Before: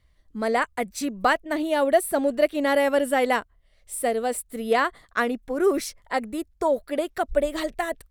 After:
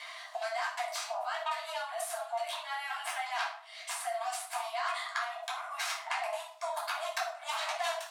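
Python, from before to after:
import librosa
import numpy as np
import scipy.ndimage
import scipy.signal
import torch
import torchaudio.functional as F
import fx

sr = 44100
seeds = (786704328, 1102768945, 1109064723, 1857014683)

y = fx.peak_eq(x, sr, hz=870.0, db=-6.5, octaves=2.8)
y = fx.notch(y, sr, hz=1700.0, q=27.0)
y = fx.over_compress(y, sr, threshold_db=-39.0, ratio=-1.0)
y = fx.cheby_harmonics(y, sr, harmonics=(7,), levels_db=(-9,), full_scale_db=-18.5)
y = fx.brickwall_highpass(y, sr, low_hz=620.0)
y = fx.air_absorb(y, sr, metres=54.0)
y = fx.room_shoebox(y, sr, seeds[0], volume_m3=500.0, walls='furnished', distance_m=5.4)
y = fx.band_squash(y, sr, depth_pct=70)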